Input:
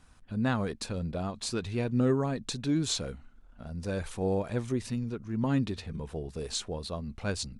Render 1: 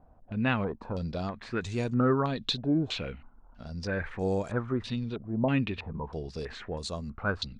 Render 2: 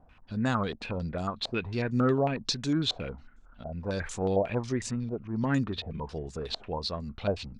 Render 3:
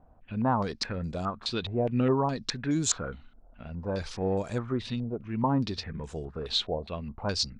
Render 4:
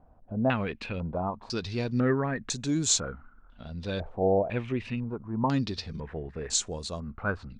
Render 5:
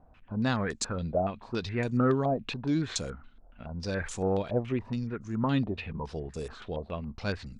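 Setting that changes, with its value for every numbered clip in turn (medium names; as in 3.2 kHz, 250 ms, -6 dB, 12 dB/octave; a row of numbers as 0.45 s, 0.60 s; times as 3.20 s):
step-sequenced low-pass, rate: 3.1 Hz, 11 Hz, 4.8 Hz, 2 Hz, 7.1 Hz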